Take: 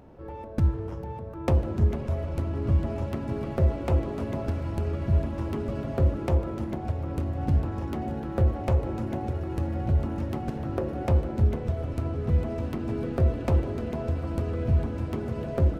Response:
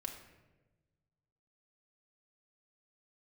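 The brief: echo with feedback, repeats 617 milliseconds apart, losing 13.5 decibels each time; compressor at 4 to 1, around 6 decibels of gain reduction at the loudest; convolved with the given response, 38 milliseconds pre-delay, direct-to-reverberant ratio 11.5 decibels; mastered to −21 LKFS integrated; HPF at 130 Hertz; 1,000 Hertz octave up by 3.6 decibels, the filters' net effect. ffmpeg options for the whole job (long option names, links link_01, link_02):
-filter_complex "[0:a]highpass=130,equalizer=frequency=1000:width_type=o:gain=5,acompressor=threshold=-30dB:ratio=4,aecho=1:1:617|1234:0.211|0.0444,asplit=2[link_01][link_02];[1:a]atrim=start_sample=2205,adelay=38[link_03];[link_02][link_03]afir=irnorm=-1:irlink=0,volume=-10dB[link_04];[link_01][link_04]amix=inputs=2:normalize=0,volume=14dB"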